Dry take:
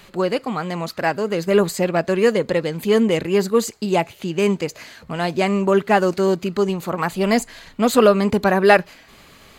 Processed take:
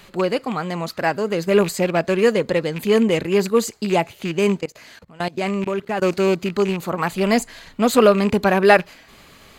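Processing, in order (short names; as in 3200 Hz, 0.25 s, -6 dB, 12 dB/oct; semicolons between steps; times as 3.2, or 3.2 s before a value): rattling part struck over -26 dBFS, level -20 dBFS; 4.6–6.02 level quantiser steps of 22 dB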